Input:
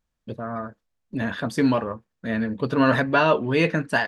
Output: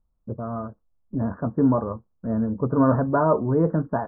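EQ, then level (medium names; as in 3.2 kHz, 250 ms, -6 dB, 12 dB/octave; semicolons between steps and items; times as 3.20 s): steep low-pass 1.3 kHz 48 dB/octave; distance through air 210 m; bass shelf 95 Hz +11 dB; 0.0 dB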